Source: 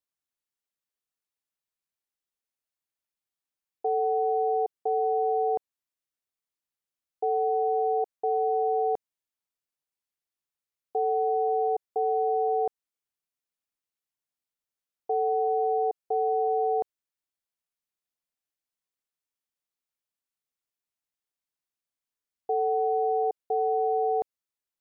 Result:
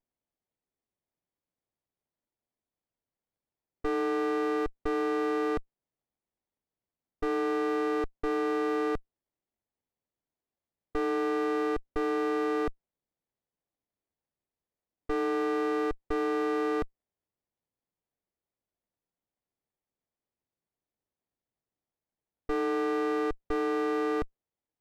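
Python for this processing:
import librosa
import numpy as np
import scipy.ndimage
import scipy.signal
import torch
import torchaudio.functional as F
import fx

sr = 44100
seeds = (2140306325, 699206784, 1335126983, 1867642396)

y = fx.running_max(x, sr, window=33)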